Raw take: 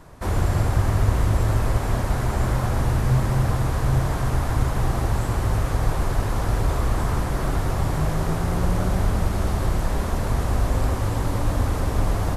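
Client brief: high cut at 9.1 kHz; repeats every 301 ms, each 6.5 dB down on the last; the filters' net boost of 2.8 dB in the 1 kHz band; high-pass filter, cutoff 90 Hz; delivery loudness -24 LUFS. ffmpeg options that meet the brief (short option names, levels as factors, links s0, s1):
-af "highpass=90,lowpass=9100,equalizer=f=1000:t=o:g=3.5,aecho=1:1:301|602|903|1204|1505|1806:0.473|0.222|0.105|0.0491|0.0231|0.0109,volume=1.06"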